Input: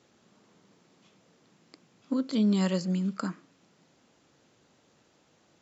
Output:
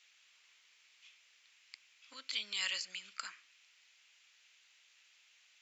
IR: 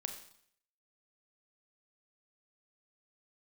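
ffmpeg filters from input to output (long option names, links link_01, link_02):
-af "highpass=frequency=2400:width_type=q:width=2.6"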